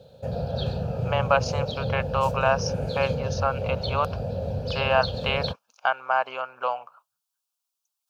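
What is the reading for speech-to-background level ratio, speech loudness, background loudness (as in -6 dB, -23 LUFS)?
2.5 dB, -27.0 LUFS, -29.5 LUFS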